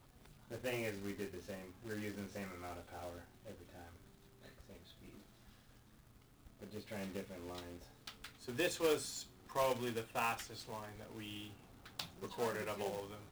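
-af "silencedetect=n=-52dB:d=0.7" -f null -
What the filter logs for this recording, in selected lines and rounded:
silence_start: 5.49
silence_end: 6.46 | silence_duration: 0.97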